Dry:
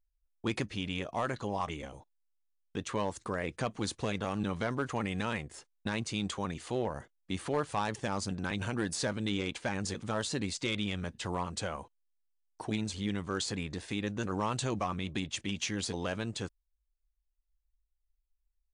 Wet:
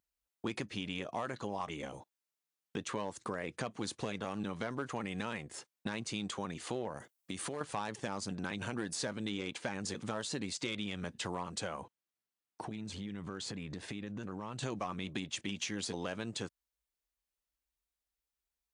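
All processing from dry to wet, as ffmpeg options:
-filter_complex "[0:a]asettb=1/sr,asplit=3[s0][s1][s2];[s0]atrim=end=6.974[s3];[s1]atrim=start=6.97:end=7.61,asetpts=PTS-STARTPTS,afade=t=in:d=0.004:c=qsin,afade=t=out:st=0.636:d=0.004:c=qsin,highshelf=f=7200:g=11.5,acompressor=threshold=0.0126:ratio=4:attack=3.2:release=140:knee=1:detection=peak,bandreject=f=900:w=25[s4];[s2]atrim=start=7.606[s5];[s3][s4]acrossfade=d=0.004:c1=hsin:c2=qsin[s6];[s6][s5]acrossfade=d=0.004:c1=qsin:c2=hsin,asettb=1/sr,asplit=3[s7][s8][s9];[s7]atrim=end=11.814[s10];[s8]atrim=start=11.81:end=14.63,asetpts=PTS-STARTPTS,afade=t=in:d=0.004:c=qsin,afade=t=out:st=2.816:d=0.004:c=qsin,bass=f=250:g=5,treble=f=4000:g=-5,acompressor=threshold=0.0112:ratio=12:attack=3.2:release=140:knee=1:detection=peak[s11];[s9]atrim=start=14.626[s12];[s10][s11]acrossfade=d=0.004:c1=hsin:c2=qsin[s13];[s13][s12]acrossfade=d=0.004:c1=qsin:c2=hsin,highpass=130,acompressor=threshold=0.01:ratio=3,volume=1.5"

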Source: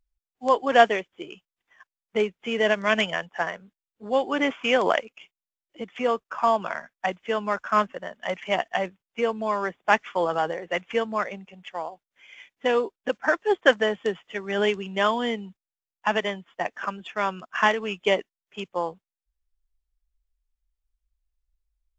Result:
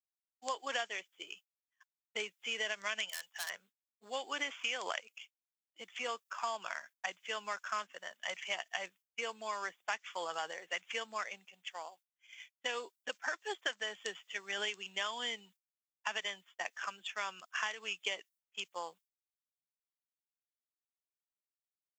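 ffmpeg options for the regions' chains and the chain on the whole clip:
-filter_complex "[0:a]asettb=1/sr,asplit=3[s0][s1][s2];[s0]atrim=end=3.094[s3];[s1]atrim=start=3.09:end=3.5,asetpts=PTS-STARTPTS,afade=t=in:d=0.004:c=qsin,afade=t=out:st=0.406:d=0.004:c=qsin,highpass=f=1100:p=1,asoftclip=type=hard:threshold=0.0299,highshelf=f=4800:g=4.5[s4];[s2]atrim=start=3.496[s5];[s3][s4]acrossfade=d=0.004:c1=hsin:c2=qsin[s6];[s6][s5]acrossfade=d=0.004:c1=qsin:c2=hsin,agate=range=0.0224:threshold=0.00631:ratio=3:detection=peak,aderivative,acompressor=threshold=0.0126:ratio=12,volume=1.88"

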